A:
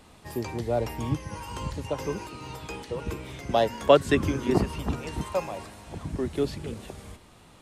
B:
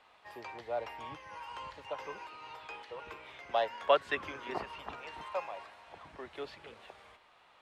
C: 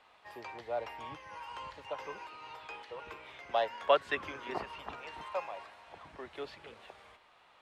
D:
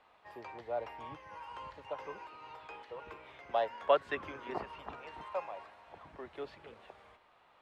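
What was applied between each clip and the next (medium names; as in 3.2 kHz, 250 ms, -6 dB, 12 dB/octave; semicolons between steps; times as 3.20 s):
three-band isolator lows -24 dB, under 580 Hz, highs -21 dB, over 3.8 kHz; trim -3.5 dB
no audible change
treble shelf 2.1 kHz -9 dB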